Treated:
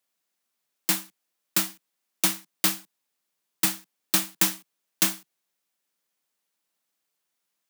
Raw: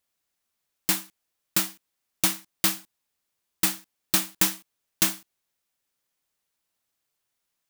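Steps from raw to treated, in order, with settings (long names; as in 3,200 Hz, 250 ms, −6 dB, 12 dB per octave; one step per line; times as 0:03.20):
Butterworth high-pass 150 Hz 48 dB per octave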